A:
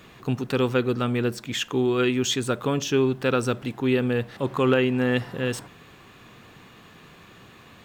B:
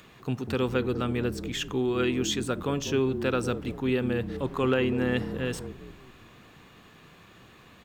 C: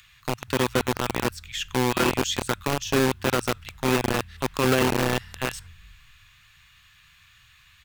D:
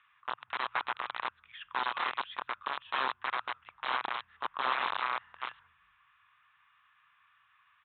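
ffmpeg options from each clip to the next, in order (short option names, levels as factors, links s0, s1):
-filter_complex "[0:a]acrossover=split=830[s0][s1];[s0]asplit=6[s2][s3][s4][s5][s6][s7];[s3]adelay=196,afreqshift=-39,volume=0.398[s8];[s4]adelay=392,afreqshift=-78,volume=0.184[s9];[s5]adelay=588,afreqshift=-117,volume=0.0841[s10];[s6]adelay=784,afreqshift=-156,volume=0.0389[s11];[s7]adelay=980,afreqshift=-195,volume=0.0178[s12];[s2][s8][s9][s10][s11][s12]amix=inputs=6:normalize=0[s13];[s1]acompressor=mode=upward:threshold=0.00316:ratio=2.5[s14];[s13][s14]amix=inputs=2:normalize=0,volume=0.596"
-filter_complex "[0:a]acrossover=split=100|1400[s0][s1][s2];[s0]alimiter=level_in=8.91:limit=0.0631:level=0:latency=1,volume=0.112[s3];[s1]acrusher=bits=3:mix=0:aa=0.000001[s4];[s3][s4][s2]amix=inputs=3:normalize=0,volume=1.33"
-af "aresample=8000,aeval=exprs='(mod(5.31*val(0)+1,2)-1)/5.31':c=same,aresample=44100,bandpass=f=1100:t=q:w=2.8:csg=0"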